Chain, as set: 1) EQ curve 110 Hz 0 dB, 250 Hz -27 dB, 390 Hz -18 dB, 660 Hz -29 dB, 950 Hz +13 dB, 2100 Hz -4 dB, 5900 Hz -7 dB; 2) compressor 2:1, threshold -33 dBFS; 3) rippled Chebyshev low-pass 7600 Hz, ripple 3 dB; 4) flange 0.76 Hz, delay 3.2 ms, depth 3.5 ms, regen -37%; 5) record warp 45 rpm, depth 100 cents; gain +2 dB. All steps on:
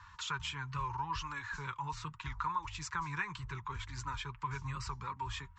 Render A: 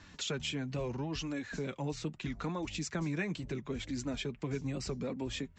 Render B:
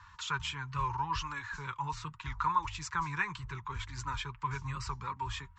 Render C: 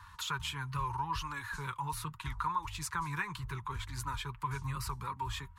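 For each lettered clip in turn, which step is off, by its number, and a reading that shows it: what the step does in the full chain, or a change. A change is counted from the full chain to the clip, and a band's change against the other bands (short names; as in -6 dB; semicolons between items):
1, 500 Hz band +14.0 dB; 2, momentary loudness spread change +3 LU; 3, loudness change +2.0 LU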